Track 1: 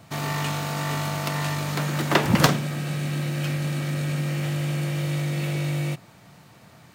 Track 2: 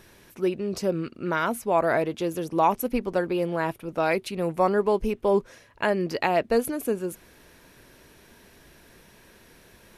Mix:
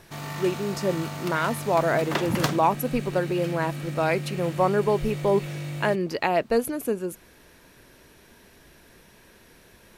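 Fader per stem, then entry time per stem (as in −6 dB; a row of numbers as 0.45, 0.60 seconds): −7.0, 0.0 decibels; 0.00, 0.00 seconds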